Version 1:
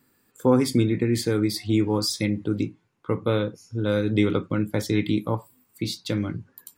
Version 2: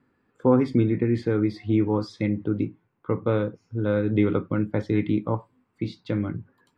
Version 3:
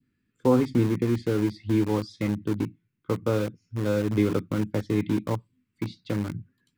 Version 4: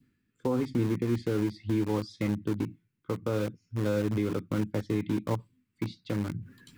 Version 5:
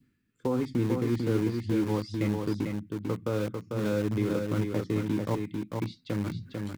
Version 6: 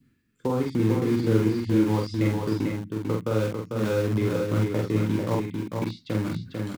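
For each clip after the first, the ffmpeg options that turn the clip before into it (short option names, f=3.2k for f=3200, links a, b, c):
-af "lowpass=1.9k"
-filter_complex "[0:a]adynamicequalizer=threshold=0.00501:dfrequency=1700:dqfactor=1.2:tfrequency=1700:tqfactor=1.2:attack=5:release=100:ratio=0.375:range=2:mode=cutabove:tftype=bell,acrossover=split=300|1800[a][b][c];[b]aeval=exprs='val(0)*gte(abs(val(0)),0.0266)':c=same[d];[a][d][c]amix=inputs=3:normalize=0,volume=-1.5dB"
-af "alimiter=limit=-17dB:level=0:latency=1:release=198,areverse,acompressor=mode=upward:threshold=-37dB:ratio=2.5,areverse,volume=-1.5dB"
-af "aecho=1:1:446:0.596"
-filter_complex "[0:a]asplit=2[a][b];[b]adelay=46,volume=-2.5dB[c];[a][c]amix=inputs=2:normalize=0,volume=2.5dB"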